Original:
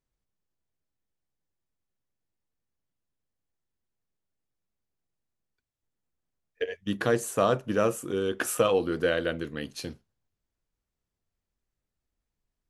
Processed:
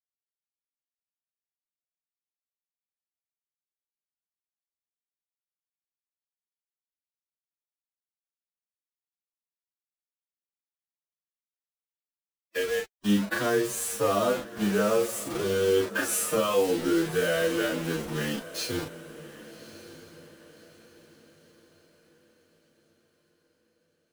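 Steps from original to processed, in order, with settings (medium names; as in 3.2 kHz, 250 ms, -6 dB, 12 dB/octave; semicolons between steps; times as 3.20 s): high-pass 80 Hz 12 dB/octave; in parallel at +2.5 dB: peak limiter -18.5 dBFS, peak gain reduction 8.5 dB; on the sum: compression 2:1, threshold -21 dBFS, peak gain reduction 4.5 dB; flange 1.1 Hz, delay 1.3 ms, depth 3.9 ms, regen -27%; bit crusher 6-bit; chorus 0.34 Hz, delay 18 ms, depth 2.1 ms; time stretch by phase-locked vocoder 1.9×; on a send: echo that smears into a reverb 1158 ms, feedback 40%, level -16 dB; on the sum: trim +4.5 dB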